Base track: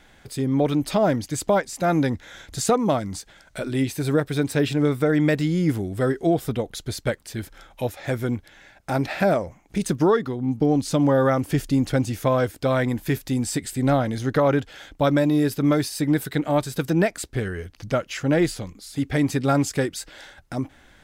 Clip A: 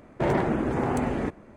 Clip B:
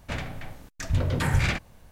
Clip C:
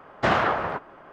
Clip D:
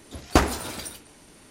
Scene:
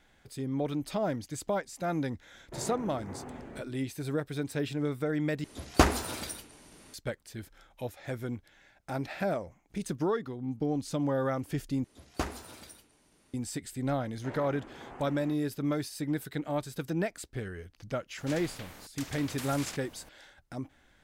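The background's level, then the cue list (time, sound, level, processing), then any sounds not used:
base track −11 dB
0:02.32: mix in A −17.5 dB + floating-point word with a short mantissa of 6 bits
0:05.44: overwrite with D −3 dB
0:11.84: overwrite with D −14.5 dB
0:14.04: mix in A −15.5 dB + low-shelf EQ 460 Hz −11.5 dB
0:18.18: mix in B −16.5 dB + every bin compressed towards the loudest bin 4 to 1
not used: C

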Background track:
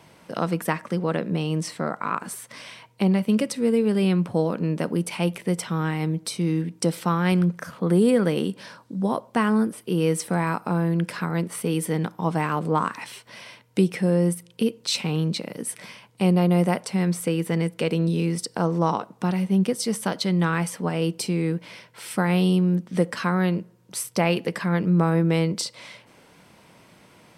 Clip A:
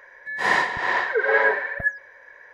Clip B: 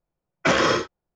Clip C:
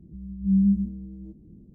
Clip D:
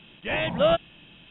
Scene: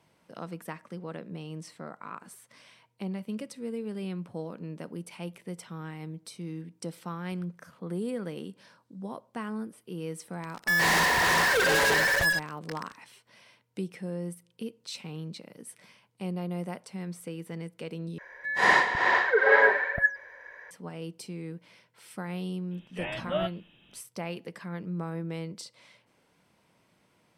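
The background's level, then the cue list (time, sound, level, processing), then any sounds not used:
background track −14.5 dB
0:10.41: mix in A −9 dB + fuzz pedal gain 41 dB, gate −40 dBFS
0:18.18: overwrite with A −0.5 dB
0:22.71: mix in D −5.5 dB + tuned comb filter 120 Hz, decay 0.2 s, mix 50%
not used: B, C

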